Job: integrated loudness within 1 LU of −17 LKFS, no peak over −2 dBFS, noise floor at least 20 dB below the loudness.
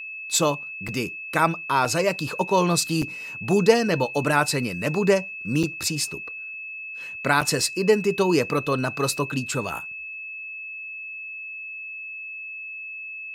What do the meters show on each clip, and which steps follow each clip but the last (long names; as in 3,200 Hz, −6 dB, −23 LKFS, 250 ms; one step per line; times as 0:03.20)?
number of dropouts 5; longest dropout 5.1 ms; interfering tone 2,600 Hz; level of the tone −33 dBFS; integrated loudness −24.5 LKFS; sample peak −4.0 dBFS; target loudness −17.0 LKFS
→ repair the gap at 0:00.88/0:01.85/0:03.02/0:05.63/0:07.41, 5.1 ms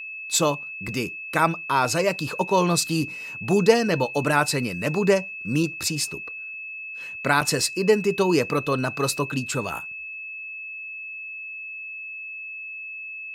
number of dropouts 0; interfering tone 2,600 Hz; level of the tone −33 dBFS
→ notch filter 2,600 Hz, Q 30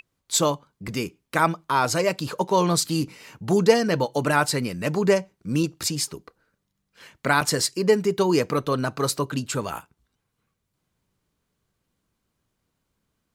interfering tone none found; integrated loudness −23.5 LKFS; sample peak −4.0 dBFS; target loudness −17.0 LKFS
→ level +6.5 dB
brickwall limiter −2 dBFS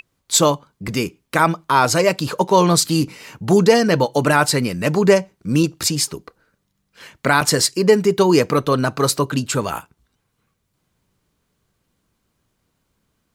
integrated loudness −17.5 LKFS; sample peak −2.0 dBFS; background noise floor −72 dBFS